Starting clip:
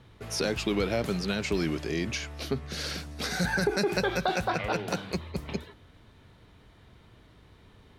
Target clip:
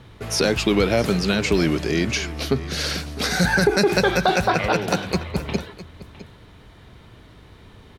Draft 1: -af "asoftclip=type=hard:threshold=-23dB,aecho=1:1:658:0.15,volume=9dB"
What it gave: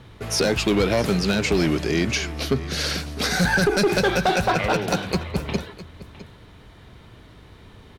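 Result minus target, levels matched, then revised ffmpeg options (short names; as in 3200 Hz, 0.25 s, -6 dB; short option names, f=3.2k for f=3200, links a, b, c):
hard clip: distortion +22 dB
-af "asoftclip=type=hard:threshold=-15.5dB,aecho=1:1:658:0.15,volume=9dB"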